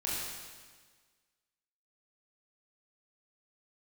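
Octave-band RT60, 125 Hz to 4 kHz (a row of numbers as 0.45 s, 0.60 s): 1.6 s, 1.6 s, 1.5 s, 1.5 s, 1.5 s, 1.5 s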